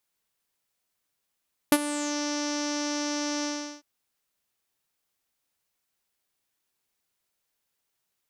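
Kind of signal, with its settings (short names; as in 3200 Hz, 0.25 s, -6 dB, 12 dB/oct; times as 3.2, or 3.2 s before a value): synth note saw D4 12 dB/oct, low-pass 5800 Hz, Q 7.5, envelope 1 oct, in 0.42 s, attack 1.3 ms, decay 0.05 s, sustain -15.5 dB, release 0.38 s, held 1.72 s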